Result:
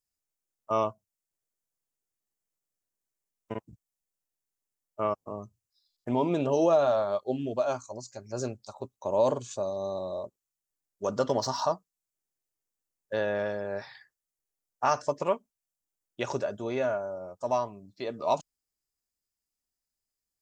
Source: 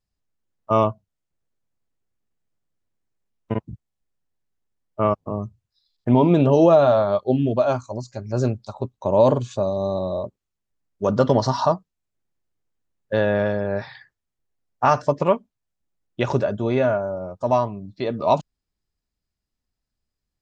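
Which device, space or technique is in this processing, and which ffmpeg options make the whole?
exciter from parts: -filter_complex "[0:a]bass=frequency=250:gain=-9,treble=frequency=4000:gain=10,asplit=2[link_01][link_02];[link_02]highpass=frequency=3600:width=0.5412,highpass=frequency=3600:width=1.3066,asoftclip=type=tanh:threshold=-25.5dB,volume=-7dB[link_03];[link_01][link_03]amix=inputs=2:normalize=0,volume=-8dB"

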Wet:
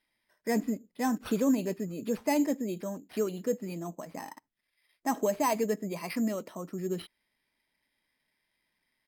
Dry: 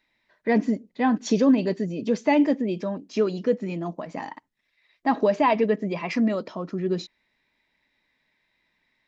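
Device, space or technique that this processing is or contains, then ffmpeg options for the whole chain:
crushed at another speed: -af "asetrate=55125,aresample=44100,acrusher=samples=5:mix=1:aa=0.000001,asetrate=35280,aresample=44100,volume=-7.5dB"

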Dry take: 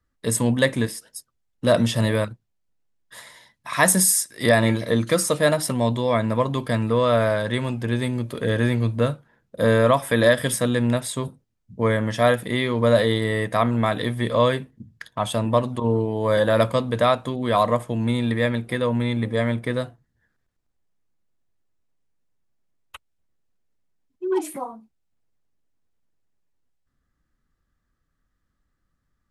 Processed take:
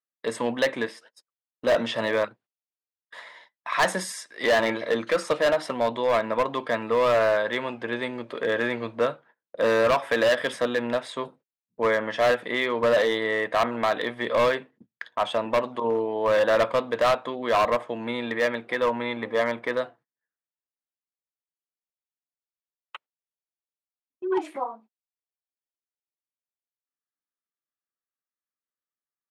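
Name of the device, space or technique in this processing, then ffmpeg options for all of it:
walkie-talkie: -filter_complex "[0:a]asettb=1/sr,asplit=3[link_01][link_02][link_03];[link_01]atrim=end=18.784[link_04];[link_02]atrim=start=18.78:end=19.78,asetpts=PTS-STARTPTS,afade=type=in:duration=0.004:curve=qsin,afade=type=out:start_time=0.996:duration=0.004:curve=qsin,equalizer=frequency=1000:width_type=o:width=0.64:gain=4[link_05];[link_03]atrim=start=19.776[link_06];[link_04][link_05]acrossfade=duration=0.004:curve1=hsin:curve2=qsin[link_07];[link_07][link_06]acrossfade=duration=0.004:curve1=qsin:curve2=hsin,highpass=460,lowpass=2900,asoftclip=type=hard:threshold=-19dB,agate=range=-22dB:threshold=-53dB:ratio=16:detection=peak,volume=2.5dB"

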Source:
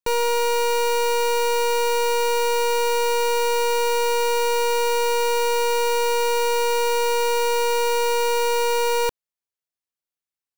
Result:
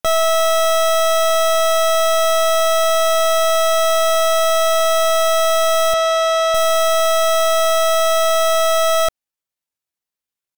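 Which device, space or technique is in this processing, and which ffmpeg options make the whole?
chipmunk voice: -filter_complex "[0:a]asettb=1/sr,asplit=3[link_01][link_02][link_03];[link_01]atrim=end=5.944[link_04];[link_02]atrim=start=5.94:end=6.55,asetpts=PTS-STARTPTS,afade=type=in:duration=0.004:curve=qsin,afade=type=out:start_time=0.606:duration=0.004:curve=qsin,acrossover=split=170 4900:gain=0.0891 1 0.178[link_05][link_06][link_07];[link_05][link_06][link_07]amix=inputs=3:normalize=0[link_08];[link_03]atrim=start=6.546[link_09];[link_04][link_08]acrossfade=duration=0.004:curve1=hsin:curve2=qsin[link_10];[link_10][link_09]acrossfade=duration=0.004:curve1=qsin:curve2=hsin,asetrate=60591,aresample=44100,atempo=0.727827,volume=5.5dB"

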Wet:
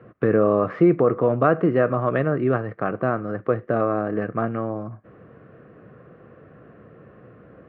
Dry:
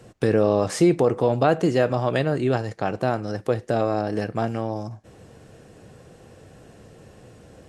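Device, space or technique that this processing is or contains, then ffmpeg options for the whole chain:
bass cabinet: -af "highpass=86,equalizer=frequency=87:width_type=q:width=4:gain=-8,equalizer=frequency=850:width_type=q:width=4:gain=-10,equalizer=frequency=1200:width_type=q:width=4:gain=9,lowpass=frequency=2000:width=0.5412,lowpass=frequency=2000:width=1.3066,volume=1.5dB"

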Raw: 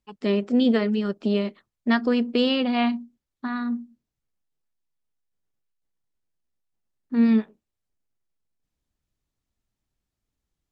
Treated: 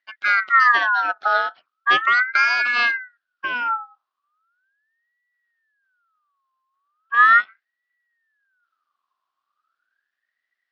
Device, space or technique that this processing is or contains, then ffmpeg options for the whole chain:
voice changer toy: -af "aeval=exprs='val(0)*sin(2*PI*1500*n/s+1500*0.3/0.38*sin(2*PI*0.38*n/s))':channel_layout=same,highpass=410,equalizer=frequency=480:width_type=q:width=4:gain=-10,equalizer=frequency=910:width_type=q:width=4:gain=-8,equalizer=frequency=1400:width_type=q:width=4:gain=3,equalizer=frequency=2200:width_type=q:width=4:gain=-6,lowpass=frequency=4400:width=0.5412,lowpass=frequency=4400:width=1.3066,volume=8dB"

